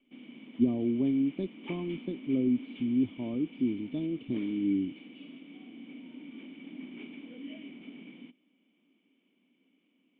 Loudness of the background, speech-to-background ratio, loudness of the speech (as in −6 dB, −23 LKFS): −47.0 LKFS, 15.5 dB, −31.5 LKFS